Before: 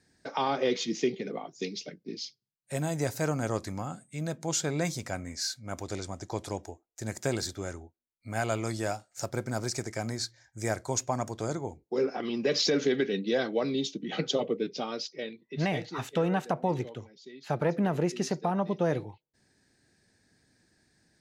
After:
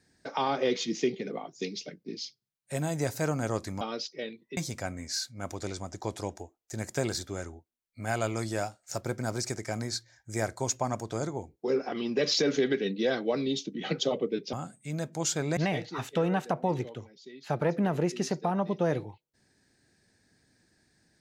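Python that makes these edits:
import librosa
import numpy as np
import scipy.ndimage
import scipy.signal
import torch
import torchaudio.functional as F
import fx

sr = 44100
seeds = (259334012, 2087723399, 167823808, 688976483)

y = fx.edit(x, sr, fx.swap(start_s=3.81, length_s=1.04, other_s=14.81, other_length_s=0.76), tone=tone)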